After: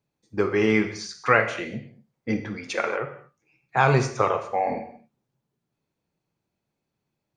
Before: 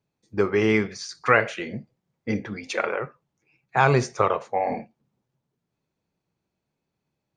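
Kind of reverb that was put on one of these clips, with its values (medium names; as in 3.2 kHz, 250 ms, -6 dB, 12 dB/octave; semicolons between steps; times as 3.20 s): gated-style reverb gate 260 ms falling, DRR 7 dB; trim -1 dB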